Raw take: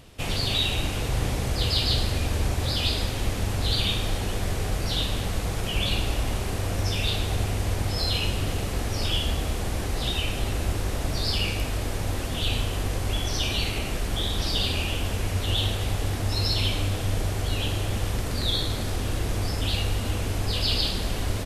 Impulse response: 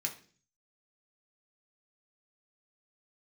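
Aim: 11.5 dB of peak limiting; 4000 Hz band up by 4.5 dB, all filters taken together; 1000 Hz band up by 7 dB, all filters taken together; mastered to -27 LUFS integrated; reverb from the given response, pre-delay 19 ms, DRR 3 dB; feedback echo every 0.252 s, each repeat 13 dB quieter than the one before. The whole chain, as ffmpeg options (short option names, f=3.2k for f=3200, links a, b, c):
-filter_complex "[0:a]equalizer=f=1k:t=o:g=9,equalizer=f=4k:t=o:g=5,alimiter=limit=-19dB:level=0:latency=1,aecho=1:1:252|504|756:0.224|0.0493|0.0108,asplit=2[a][b];[1:a]atrim=start_sample=2205,adelay=19[c];[b][c]afir=irnorm=-1:irlink=0,volume=-4.5dB[d];[a][d]amix=inputs=2:normalize=0"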